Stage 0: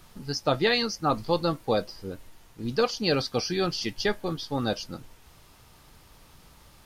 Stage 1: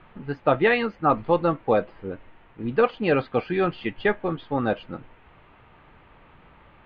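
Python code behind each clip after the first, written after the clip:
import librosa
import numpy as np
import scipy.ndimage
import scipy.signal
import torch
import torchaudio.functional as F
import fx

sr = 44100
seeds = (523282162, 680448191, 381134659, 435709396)

y = scipy.signal.sosfilt(scipy.signal.cheby2(4, 40, 5100.0, 'lowpass', fs=sr, output='sos'), x)
y = fx.low_shelf(y, sr, hz=170.0, db=-7.0)
y = F.gain(torch.from_numpy(y), 5.5).numpy()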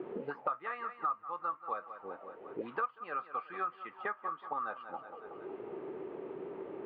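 y = fx.auto_wah(x, sr, base_hz=360.0, top_hz=1200.0, q=8.1, full_db=-24.5, direction='up')
y = fx.echo_feedback(y, sr, ms=184, feedback_pct=39, wet_db=-15.0)
y = fx.band_squash(y, sr, depth_pct=100)
y = F.gain(torch.from_numpy(y), -1.0).numpy()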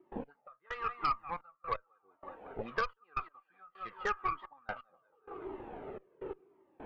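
y = fx.step_gate(x, sr, bpm=128, pattern='.x....xxxxxx.', floor_db=-24.0, edge_ms=4.5)
y = fx.cheby_harmonics(y, sr, harmonics=(2, 4), levels_db=(-7, -10), full_scale_db=-22.5)
y = fx.comb_cascade(y, sr, direction='falling', hz=0.91)
y = F.gain(torch.from_numpy(y), 6.0).numpy()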